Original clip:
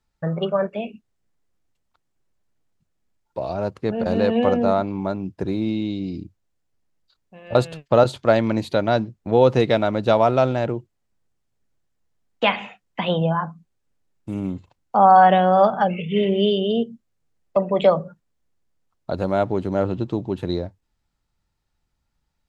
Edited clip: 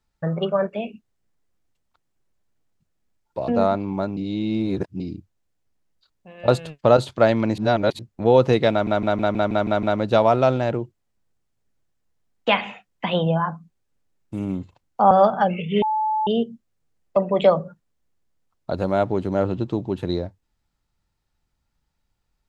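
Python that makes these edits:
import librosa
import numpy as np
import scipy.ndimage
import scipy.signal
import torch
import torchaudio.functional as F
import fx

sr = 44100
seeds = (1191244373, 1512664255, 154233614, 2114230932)

y = fx.edit(x, sr, fx.cut(start_s=3.48, length_s=1.07),
    fx.reverse_span(start_s=5.24, length_s=0.83),
    fx.reverse_span(start_s=8.65, length_s=0.41),
    fx.stutter(start_s=9.78, slice_s=0.16, count=8),
    fx.cut(start_s=15.06, length_s=0.45),
    fx.bleep(start_s=16.22, length_s=0.45, hz=865.0, db=-19.0), tone=tone)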